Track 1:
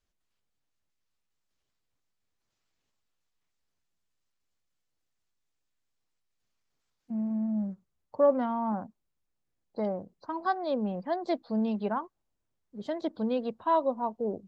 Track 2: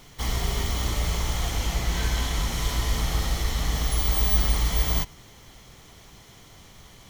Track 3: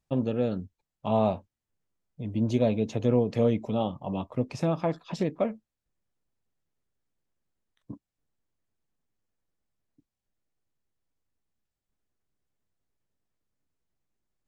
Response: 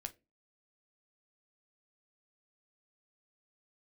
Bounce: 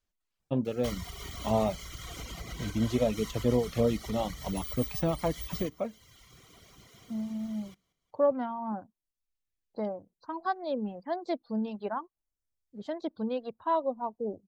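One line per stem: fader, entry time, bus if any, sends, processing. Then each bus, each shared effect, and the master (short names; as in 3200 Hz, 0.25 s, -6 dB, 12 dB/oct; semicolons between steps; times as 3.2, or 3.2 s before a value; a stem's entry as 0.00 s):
-2.0 dB, 0.00 s, no send, no echo send, dry
-2.5 dB, 0.65 s, no send, echo send -14.5 dB, compressor 6:1, threshold -28 dBFS, peak gain reduction 11.5 dB; notch comb 860 Hz
-1.5 dB, 0.40 s, no send, no echo send, auto duck -15 dB, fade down 1.80 s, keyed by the first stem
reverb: off
echo: feedback echo 0.181 s, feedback 49%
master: reverb removal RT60 1 s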